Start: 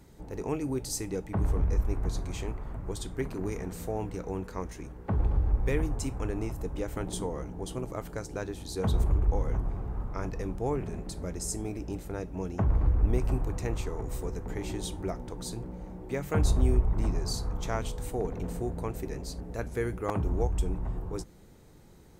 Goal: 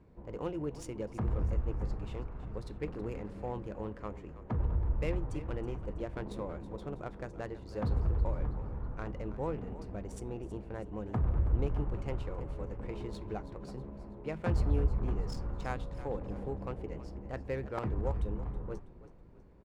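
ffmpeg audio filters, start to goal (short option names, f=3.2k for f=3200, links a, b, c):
-filter_complex "[0:a]adynamicsmooth=sensitivity=5:basefreq=1.8k,asetrate=49833,aresample=44100,asplit=5[a][b][c][d][e];[b]adelay=324,afreqshift=-32,volume=-14.5dB[f];[c]adelay=648,afreqshift=-64,volume=-21.6dB[g];[d]adelay=972,afreqshift=-96,volume=-28.8dB[h];[e]adelay=1296,afreqshift=-128,volume=-35.9dB[i];[a][f][g][h][i]amix=inputs=5:normalize=0,volume=-5dB"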